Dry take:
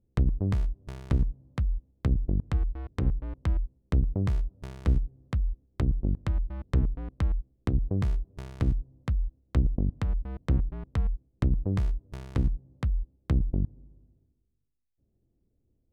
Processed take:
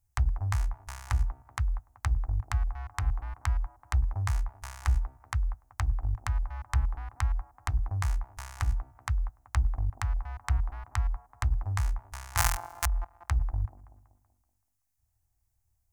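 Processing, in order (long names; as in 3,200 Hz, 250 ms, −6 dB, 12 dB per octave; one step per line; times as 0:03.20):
0:12.37–0:12.86: samples sorted by size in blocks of 256 samples
drawn EQ curve 110 Hz 0 dB, 160 Hz −29 dB, 230 Hz −20 dB, 500 Hz −21 dB, 780 Hz +8 dB, 1,800 Hz +9 dB, 3,500 Hz +2 dB, 6,500 Hz +15 dB
on a send: delay with a band-pass on its return 190 ms, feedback 45%, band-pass 440 Hz, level −6 dB
on the sum: level −1.5 dB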